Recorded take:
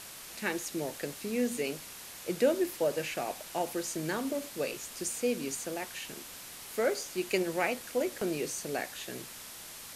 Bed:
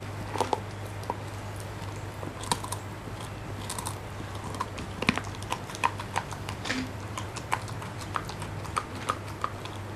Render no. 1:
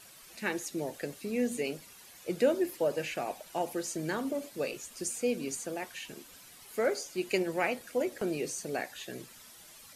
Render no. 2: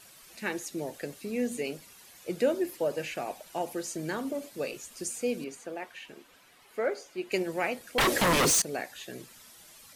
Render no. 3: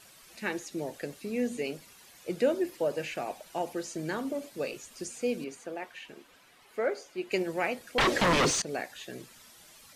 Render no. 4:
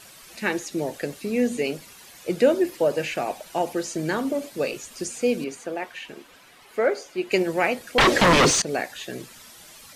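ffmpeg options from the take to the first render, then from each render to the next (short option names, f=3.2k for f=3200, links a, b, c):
-af "afftdn=nr=11:nf=-47"
-filter_complex "[0:a]asettb=1/sr,asplit=3[a][b][c];[a]atrim=end=5.444[d];[b]atrim=start=5.44:end=7.32,asetpts=PTS-STARTPTS,afade=t=in:d=0.004:c=qsin,afade=t=out:st=1.876:d=0.004:c=qsin,bass=f=250:g=-8,treble=f=4k:g=-12[e];[c]atrim=start=7.316[f];[d][e]acrossfade=d=0.004:c1=hsin:c2=qsin[g];[g][f]acrossfade=d=0.004:c1=qsin:c2=hsin,asettb=1/sr,asplit=3[h][i][j];[h]atrim=end=7.984[k];[i]atrim=start=7.98:end=8.62,asetpts=PTS-STARTPTS,afade=t=in:d=0.004:c=qsin,afade=t=out:st=0.636:d=0.004:c=qsin,aeval=exprs='0.1*sin(PI/2*6.31*val(0)/0.1)':c=same[l];[j]atrim=start=8.616[m];[k][l]acrossfade=d=0.004:c1=hsin:c2=qsin[n];[n][m]acrossfade=d=0.004:c1=qsin:c2=hsin"
-filter_complex "[0:a]acrossover=split=7200[a][b];[b]acompressor=threshold=-50dB:ratio=4:attack=1:release=60[c];[a][c]amix=inputs=2:normalize=0,highshelf=f=9.6k:g=-4.5"
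-af "volume=8dB"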